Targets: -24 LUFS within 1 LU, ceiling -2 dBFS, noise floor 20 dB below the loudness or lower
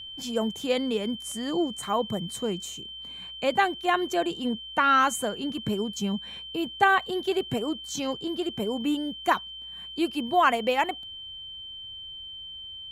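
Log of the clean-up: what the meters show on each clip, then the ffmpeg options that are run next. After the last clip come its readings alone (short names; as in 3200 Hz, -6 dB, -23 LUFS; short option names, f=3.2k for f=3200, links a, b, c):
steady tone 3100 Hz; tone level -38 dBFS; loudness -27.0 LUFS; peak -8.0 dBFS; loudness target -24.0 LUFS
-> -af "bandreject=f=3.1k:w=30"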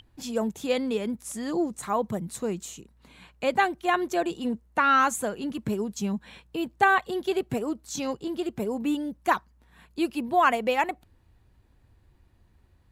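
steady tone none; loudness -27.5 LUFS; peak -8.0 dBFS; loudness target -24.0 LUFS
-> -af "volume=3.5dB"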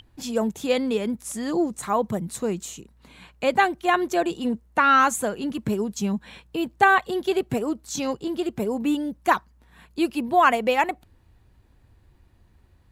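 loudness -24.0 LUFS; peak -4.5 dBFS; noise floor -58 dBFS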